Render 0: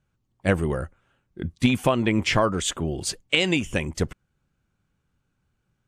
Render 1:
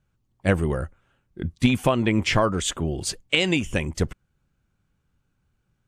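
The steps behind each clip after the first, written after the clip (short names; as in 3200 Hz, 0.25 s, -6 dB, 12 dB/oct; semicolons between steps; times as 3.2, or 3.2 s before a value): low shelf 86 Hz +5 dB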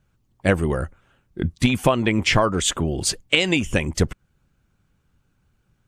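in parallel at +1 dB: compressor, threshold -27 dBFS, peak gain reduction 13.5 dB; on the sum: harmonic-percussive split harmonic -4 dB; gain +1 dB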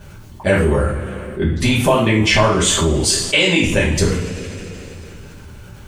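two-slope reverb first 0.46 s, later 2.2 s, from -22 dB, DRR -8.5 dB; fast leveller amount 50%; gain -6.5 dB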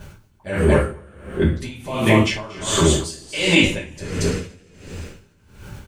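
echo 0.231 s -6.5 dB; dB-linear tremolo 1.4 Hz, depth 23 dB; gain +1 dB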